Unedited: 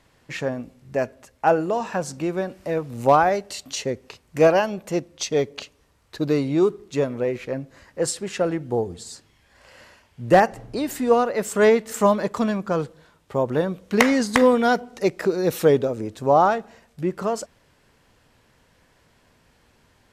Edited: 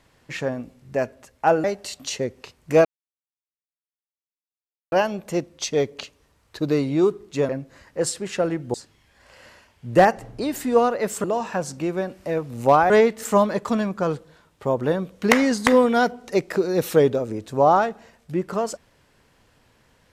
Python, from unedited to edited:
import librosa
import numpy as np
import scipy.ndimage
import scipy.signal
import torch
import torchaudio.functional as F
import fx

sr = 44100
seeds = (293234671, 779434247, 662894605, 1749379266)

y = fx.edit(x, sr, fx.move(start_s=1.64, length_s=1.66, to_s=11.59),
    fx.insert_silence(at_s=4.51, length_s=2.07),
    fx.cut(start_s=7.08, length_s=0.42),
    fx.cut(start_s=8.75, length_s=0.34), tone=tone)